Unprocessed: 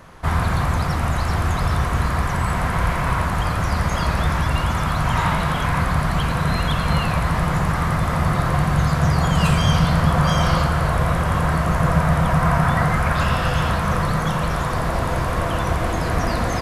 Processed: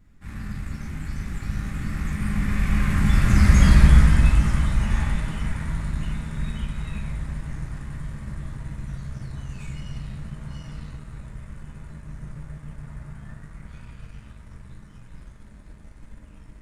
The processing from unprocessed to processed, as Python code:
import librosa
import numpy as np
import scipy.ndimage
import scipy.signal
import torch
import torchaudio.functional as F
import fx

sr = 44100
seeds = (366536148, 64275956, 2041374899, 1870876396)

p1 = fx.doppler_pass(x, sr, speed_mps=34, closest_m=15.0, pass_at_s=3.61)
p2 = fx.graphic_eq_10(p1, sr, hz=(125, 1000, 2000, 8000), db=(-5, -5, 8, 11))
p3 = fx.room_shoebox(p2, sr, seeds[0], volume_m3=78.0, walls='mixed', distance_m=1.3)
p4 = fx.dmg_noise_colour(p3, sr, seeds[1], colour='brown', level_db=-48.0)
p5 = fx.low_shelf_res(p4, sr, hz=340.0, db=10.5, q=1.5)
p6 = np.sign(p5) * np.maximum(np.abs(p5) - 10.0 ** (-30.0 / 20.0), 0.0)
p7 = p5 + F.gain(torch.from_numpy(p6), -4.0).numpy()
y = F.gain(torch.from_numpy(p7), -14.0).numpy()